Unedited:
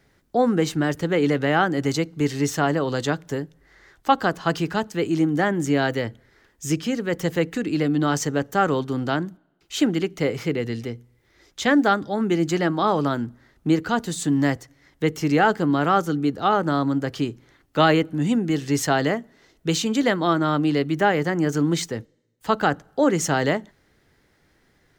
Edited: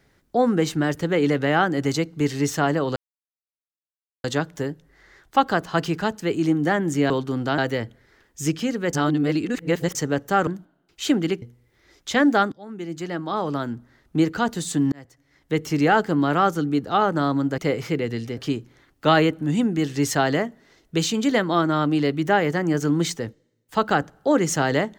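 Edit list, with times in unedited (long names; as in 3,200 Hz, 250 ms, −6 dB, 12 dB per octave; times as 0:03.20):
0:02.96: splice in silence 1.28 s
0:07.17–0:08.19: reverse
0:08.71–0:09.19: move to 0:05.82
0:10.14–0:10.93: move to 0:17.09
0:12.03–0:13.72: fade in, from −19 dB
0:14.43–0:15.15: fade in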